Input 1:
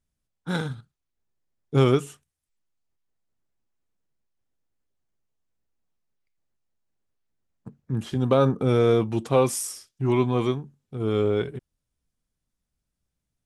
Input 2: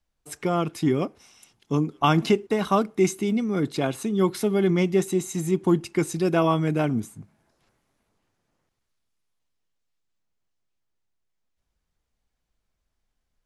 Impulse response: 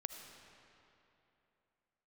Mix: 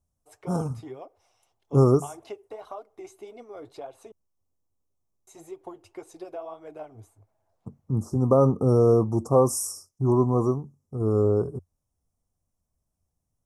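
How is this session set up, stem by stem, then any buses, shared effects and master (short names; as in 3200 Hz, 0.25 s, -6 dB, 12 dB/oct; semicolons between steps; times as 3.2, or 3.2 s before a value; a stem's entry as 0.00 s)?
+1.0 dB, 0.00 s, no send, Chebyshev band-stop 1200–5400 Hz, order 4
-10.5 dB, 0.00 s, muted 4.12–5.27, no send, EQ curve 110 Hz 0 dB, 190 Hz -23 dB, 280 Hz -5 dB, 680 Hz +13 dB, 1700 Hz -3 dB; compressor 4:1, threshold -23 dBFS, peak gain reduction 12.5 dB; flange 1.8 Hz, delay 1.6 ms, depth 9.1 ms, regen +42%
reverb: off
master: bell 89 Hz +9.5 dB 0.41 oct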